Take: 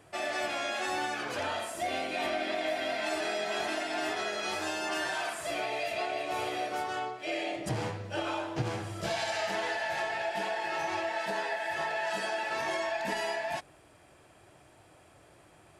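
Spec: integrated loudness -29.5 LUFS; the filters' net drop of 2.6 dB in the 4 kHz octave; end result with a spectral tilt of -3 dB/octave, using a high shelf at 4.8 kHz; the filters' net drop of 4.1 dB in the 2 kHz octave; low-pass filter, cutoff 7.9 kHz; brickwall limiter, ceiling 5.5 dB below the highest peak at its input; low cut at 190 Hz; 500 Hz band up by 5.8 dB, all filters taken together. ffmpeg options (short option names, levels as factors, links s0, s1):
-af "highpass=190,lowpass=7900,equalizer=f=500:t=o:g=9,equalizer=f=2000:t=o:g=-6,equalizer=f=4000:t=o:g=-5.5,highshelf=f=4800:g=9,volume=1.33,alimiter=limit=0.1:level=0:latency=1"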